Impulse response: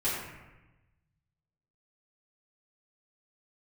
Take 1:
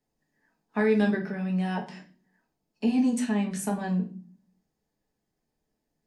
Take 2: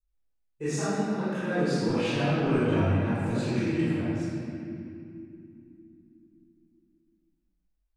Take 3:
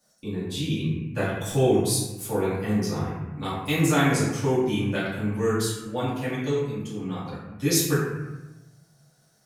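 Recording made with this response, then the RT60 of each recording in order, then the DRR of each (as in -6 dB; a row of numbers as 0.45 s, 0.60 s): 3; 0.40 s, 2.8 s, 1.1 s; 0.0 dB, -14.5 dB, -12.5 dB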